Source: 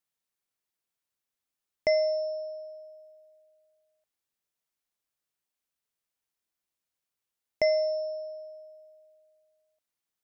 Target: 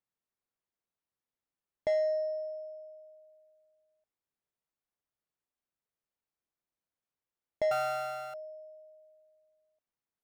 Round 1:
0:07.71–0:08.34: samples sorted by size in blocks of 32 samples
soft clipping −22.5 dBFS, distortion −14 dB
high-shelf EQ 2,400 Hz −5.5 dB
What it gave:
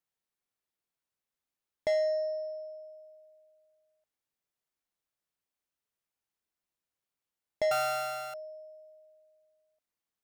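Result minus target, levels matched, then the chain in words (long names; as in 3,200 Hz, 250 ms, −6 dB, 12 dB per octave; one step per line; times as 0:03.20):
4,000 Hz band +5.5 dB
0:07.71–0:08.34: samples sorted by size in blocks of 32 samples
soft clipping −22.5 dBFS, distortion −14 dB
high-shelf EQ 2,400 Hz −15 dB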